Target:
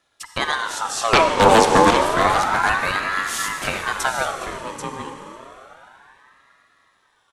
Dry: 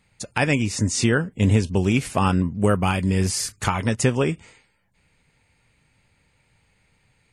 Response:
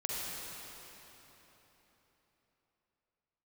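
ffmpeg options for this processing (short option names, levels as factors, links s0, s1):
-filter_complex "[0:a]highpass=150,asettb=1/sr,asplit=3[s0][s1][s2];[s0]atrim=end=1.134[s3];[s1]atrim=start=1.13:end=1.91,asetpts=PTS-STARTPTS,afade=t=in:d=0.004:c=qsin,afade=t=out:st=0.776:d=0.004:c=qsin,aeval=exprs='0.473*sin(PI/2*3.98*val(0)/0.473)':c=same[s4];[s2]atrim=start=1.906[s5];[s3][s4]acrossfade=d=0.004:c1=hsin:c2=qsin[s6];[s6][s5]acrossfade=d=0.004:c1=qsin:c2=hsin,aecho=1:1:787:0.376,asplit=2[s7][s8];[1:a]atrim=start_sample=2205[s9];[s8][s9]afir=irnorm=-1:irlink=0,volume=0.531[s10];[s7][s10]amix=inputs=2:normalize=0,aeval=exprs='val(0)*sin(2*PI*1100*n/s+1100*0.4/0.3*sin(2*PI*0.3*n/s))':c=same,volume=0.75"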